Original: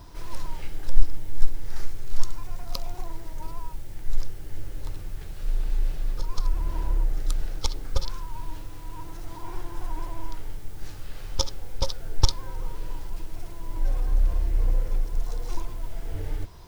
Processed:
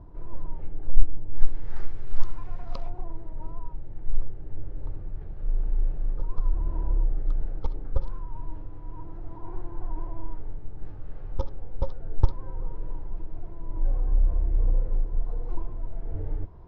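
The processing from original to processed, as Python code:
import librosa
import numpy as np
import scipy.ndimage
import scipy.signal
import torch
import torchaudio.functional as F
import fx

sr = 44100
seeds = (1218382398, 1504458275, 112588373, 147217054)

y = fx.bessel_lowpass(x, sr, hz=fx.steps((0.0, 580.0), (1.32, 1600.0), (2.88, 720.0)), order=2)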